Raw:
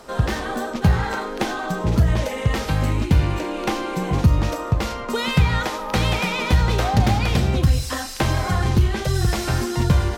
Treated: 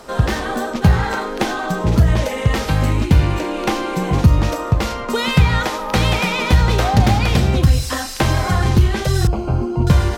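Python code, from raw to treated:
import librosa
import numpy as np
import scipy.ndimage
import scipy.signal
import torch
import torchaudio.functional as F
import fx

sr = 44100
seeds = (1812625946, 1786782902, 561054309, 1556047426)

y = fx.moving_average(x, sr, points=24, at=(9.27, 9.87))
y = y * 10.0 ** (4.0 / 20.0)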